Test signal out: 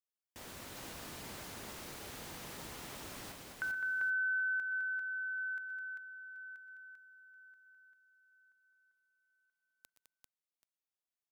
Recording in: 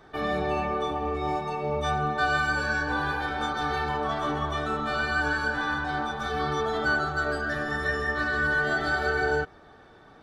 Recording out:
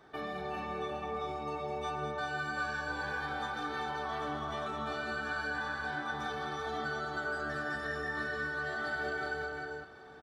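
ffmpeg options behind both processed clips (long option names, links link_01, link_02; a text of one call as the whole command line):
ffmpeg -i in.wav -af "highpass=frequency=120:poles=1,acompressor=threshold=-31dB:ratio=4,aecho=1:1:114|124|208|394|782:0.133|0.237|0.447|0.668|0.158,volume=-5.5dB" out.wav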